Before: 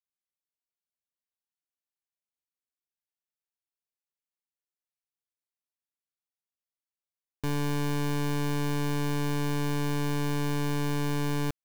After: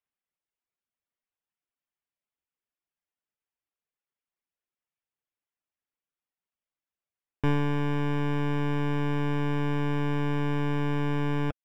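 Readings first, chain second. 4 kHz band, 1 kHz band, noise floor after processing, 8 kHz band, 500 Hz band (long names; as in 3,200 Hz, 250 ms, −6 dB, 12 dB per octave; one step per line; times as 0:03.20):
−4.0 dB, +2.0 dB, below −85 dBFS, below −15 dB, +2.0 dB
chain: reverb reduction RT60 1.1 s
Savitzky-Golay smoothing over 25 samples
level +6 dB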